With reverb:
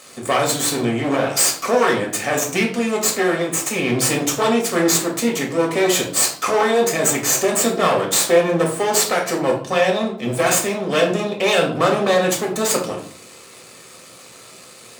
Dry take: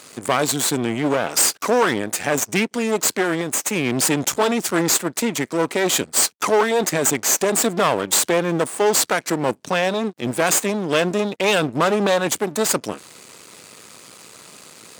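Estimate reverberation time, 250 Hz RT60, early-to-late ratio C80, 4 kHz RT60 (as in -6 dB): 0.50 s, 0.65 s, 12.0 dB, 0.40 s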